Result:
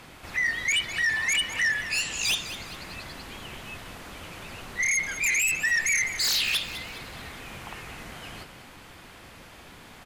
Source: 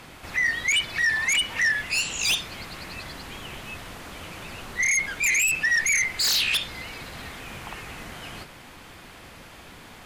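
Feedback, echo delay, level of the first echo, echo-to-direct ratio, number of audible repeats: 39%, 204 ms, -13.0 dB, -12.5 dB, 3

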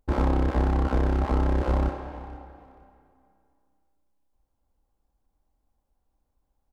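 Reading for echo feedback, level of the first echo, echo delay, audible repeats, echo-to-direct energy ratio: 24%, -19.0 dB, 472 ms, 2, -19.0 dB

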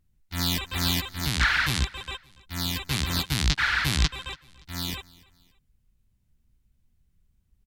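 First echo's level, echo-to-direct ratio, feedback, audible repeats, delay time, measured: -23.0 dB, -22.5 dB, 37%, 2, 286 ms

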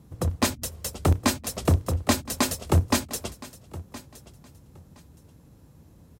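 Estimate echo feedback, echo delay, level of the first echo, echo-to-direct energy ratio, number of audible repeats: 21%, 1018 ms, -18.0 dB, -18.0 dB, 2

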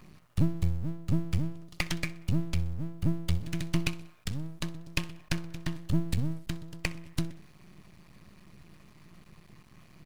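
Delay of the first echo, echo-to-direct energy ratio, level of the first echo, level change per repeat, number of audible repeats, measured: 63 ms, -19.5 dB, -20.5 dB, -6.5 dB, 3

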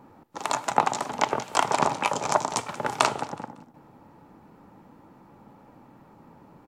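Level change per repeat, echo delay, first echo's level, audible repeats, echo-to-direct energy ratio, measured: -10.0 dB, 185 ms, -18.5 dB, 2, -18.0 dB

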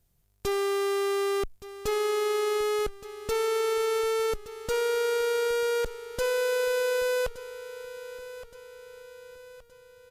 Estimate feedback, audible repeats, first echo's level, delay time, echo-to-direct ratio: 47%, 4, -15.0 dB, 1170 ms, -14.0 dB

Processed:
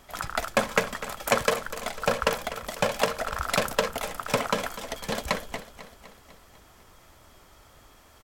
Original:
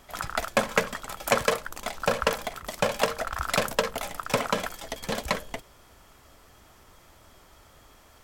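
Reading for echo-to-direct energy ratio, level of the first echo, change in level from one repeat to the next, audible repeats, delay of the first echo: -12.5 dB, -14.5 dB, -4.5 dB, 5, 249 ms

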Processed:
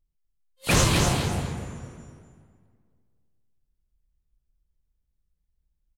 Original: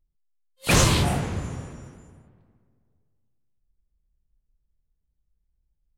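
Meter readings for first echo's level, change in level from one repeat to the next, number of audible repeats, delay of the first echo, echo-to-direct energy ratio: -5.0 dB, -12.0 dB, 2, 248 ms, -4.5 dB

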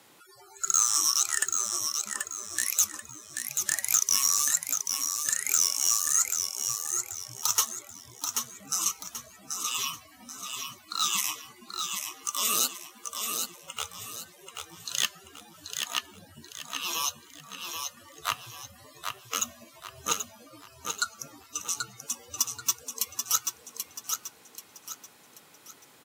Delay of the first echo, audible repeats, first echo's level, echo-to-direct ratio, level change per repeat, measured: 784 ms, 4, -5.5 dB, -5.0 dB, -9.0 dB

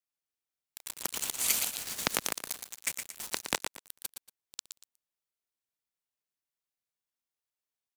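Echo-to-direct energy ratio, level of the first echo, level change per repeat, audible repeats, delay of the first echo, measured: -7.0 dB, -7.0 dB, -12.5 dB, 2, 117 ms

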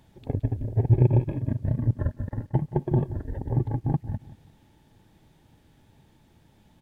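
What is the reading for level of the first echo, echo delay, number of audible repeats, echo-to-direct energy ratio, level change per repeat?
-16.5 dB, 177 ms, 2, -16.0 dB, -9.5 dB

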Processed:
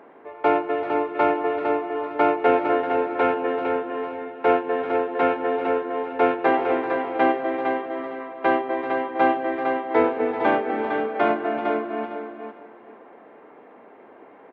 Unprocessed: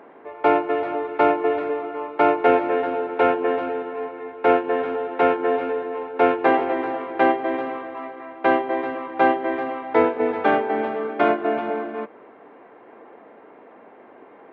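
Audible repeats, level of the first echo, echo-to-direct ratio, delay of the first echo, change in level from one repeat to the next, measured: 3, -6.0 dB, -6.0 dB, 456 ms, -14.0 dB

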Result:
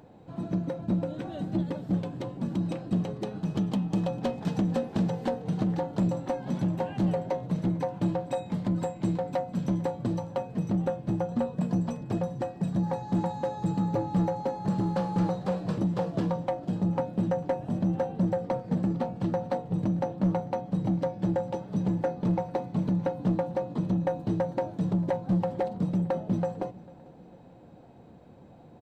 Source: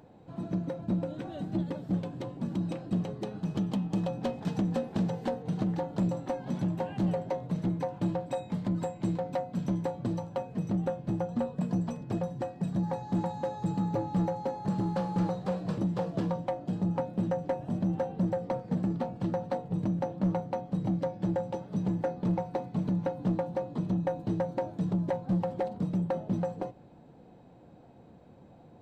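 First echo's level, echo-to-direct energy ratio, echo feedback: -23.5 dB, -22.5 dB, 47%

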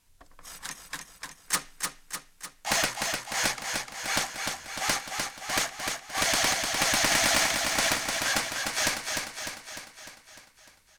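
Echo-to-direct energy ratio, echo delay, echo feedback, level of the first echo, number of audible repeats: -2.5 dB, 301 ms, 58%, -4.5 dB, 7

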